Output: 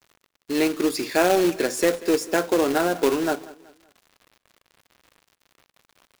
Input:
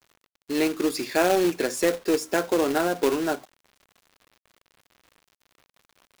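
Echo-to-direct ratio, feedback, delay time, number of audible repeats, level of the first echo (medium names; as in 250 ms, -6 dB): -19.0 dB, 37%, 189 ms, 2, -19.5 dB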